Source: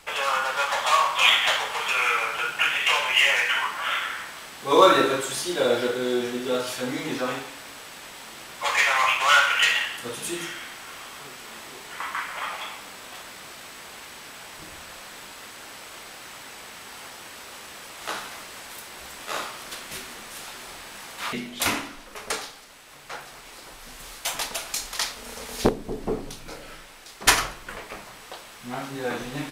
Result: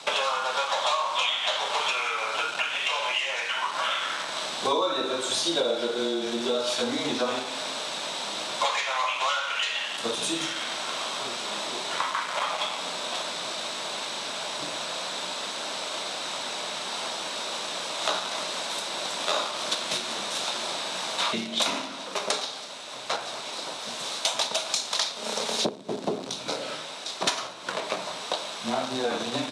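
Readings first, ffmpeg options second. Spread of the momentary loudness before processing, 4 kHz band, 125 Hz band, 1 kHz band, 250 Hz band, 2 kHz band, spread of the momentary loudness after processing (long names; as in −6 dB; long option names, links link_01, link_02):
21 LU, +1.0 dB, −5.5 dB, −2.5 dB, −2.5 dB, −6.0 dB, 6 LU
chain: -filter_complex "[0:a]asplit=2[link_01][link_02];[link_02]acrusher=bits=4:mix=0:aa=0.000001,volume=-7dB[link_03];[link_01][link_03]amix=inputs=2:normalize=0,acompressor=threshold=-32dB:ratio=16,highpass=frequency=170:width=0.5412,highpass=frequency=170:width=1.3066,equalizer=frequency=630:width_type=q:width=4:gain=8,equalizer=frequency=990:width_type=q:width=4:gain=4,equalizer=frequency=1900:width_type=q:width=4:gain=-5,equalizer=frequency=3800:width_type=q:width=4:gain=10,equalizer=frequency=5700:width_type=q:width=4:gain=3,lowpass=frequency=9000:width=0.5412,lowpass=frequency=9000:width=1.3066,afreqshift=-16,volume=6.5dB"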